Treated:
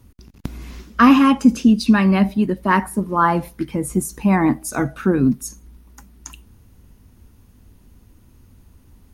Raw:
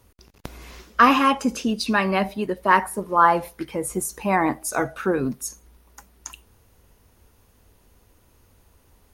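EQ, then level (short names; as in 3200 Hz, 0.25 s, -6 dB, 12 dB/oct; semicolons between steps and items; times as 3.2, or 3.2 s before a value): resonant low shelf 350 Hz +9 dB, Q 1.5; 0.0 dB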